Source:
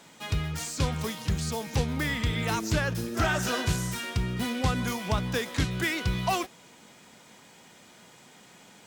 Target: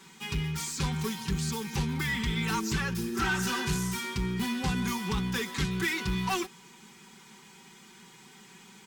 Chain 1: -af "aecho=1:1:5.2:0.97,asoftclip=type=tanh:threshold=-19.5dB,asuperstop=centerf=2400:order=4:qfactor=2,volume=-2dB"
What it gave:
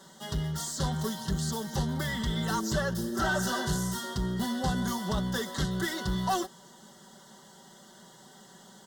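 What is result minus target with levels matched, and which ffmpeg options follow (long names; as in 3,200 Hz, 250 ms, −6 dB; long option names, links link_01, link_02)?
500 Hz band +3.5 dB
-af "aecho=1:1:5.2:0.97,asoftclip=type=tanh:threshold=-19.5dB,asuperstop=centerf=620:order=4:qfactor=2,volume=-2dB"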